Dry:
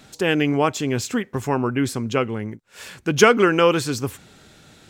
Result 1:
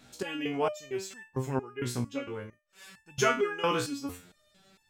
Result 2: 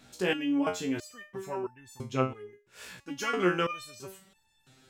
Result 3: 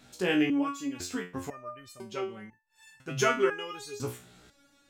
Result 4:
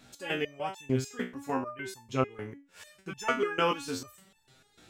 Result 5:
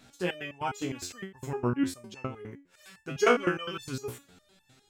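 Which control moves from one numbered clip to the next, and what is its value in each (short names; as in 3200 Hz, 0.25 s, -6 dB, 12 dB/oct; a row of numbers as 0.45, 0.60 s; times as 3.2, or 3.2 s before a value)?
stepped resonator, rate: 4.4, 3, 2, 6.7, 9.8 Hz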